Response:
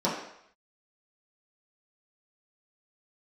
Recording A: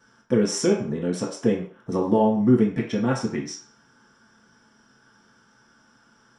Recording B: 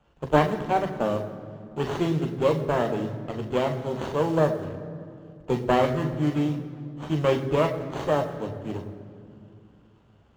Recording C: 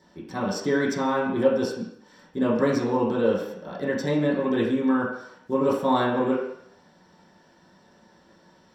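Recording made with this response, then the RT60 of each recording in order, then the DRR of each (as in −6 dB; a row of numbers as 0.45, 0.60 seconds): C; 0.45, 2.5, 0.70 seconds; −3.0, 4.0, −8.5 decibels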